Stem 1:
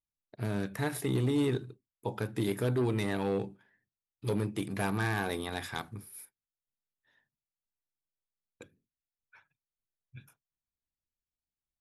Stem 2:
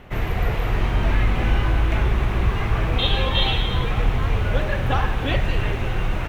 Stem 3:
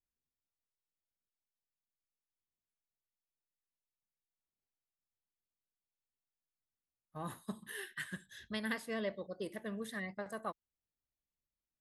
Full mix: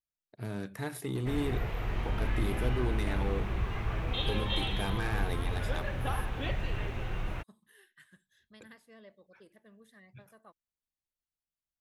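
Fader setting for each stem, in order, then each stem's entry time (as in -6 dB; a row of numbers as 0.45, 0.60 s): -4.5, -12.0, -16.5 dB; 0.00, 1.15, 0.00 s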